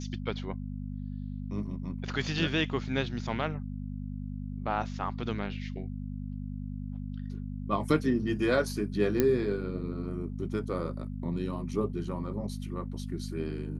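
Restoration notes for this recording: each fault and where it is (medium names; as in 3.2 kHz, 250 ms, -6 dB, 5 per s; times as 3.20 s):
hum 50 Hz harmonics 5 -37 dBFS
9.20 s: pop -11 dBFS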